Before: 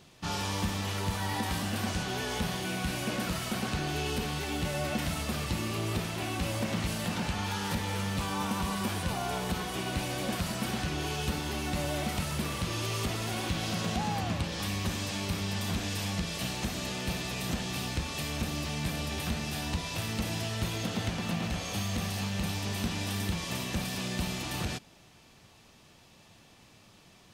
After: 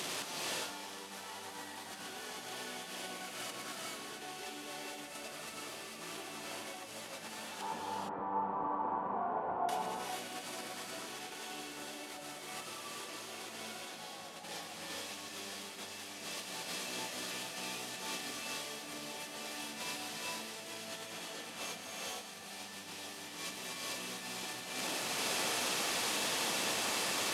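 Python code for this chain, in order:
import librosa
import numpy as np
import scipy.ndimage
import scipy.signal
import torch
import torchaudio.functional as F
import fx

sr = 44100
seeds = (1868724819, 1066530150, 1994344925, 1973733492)

y = fx.delta_mod(x, sr, bps=64000, step_db=-31.0)
y = fx.ladder_lowpass(y, sr, hz=1100.0, resonance_pct=50, at=(7.61, 9.69))
y = fx.over_compress(y, sr, threshold_db=-38.0, ratio=-0.5)
y = scipy.signal.sosfilt(scipy.signal.butter(2, 320.0, 'highpass', fs=sr, output='sos'), y)
y = fx.rev_gated(y, sr, seeds[0], gate_ms=490, shape='rising', drr_db=-3.0)
y = y * 10.0 ** (-5.0 / 20.0)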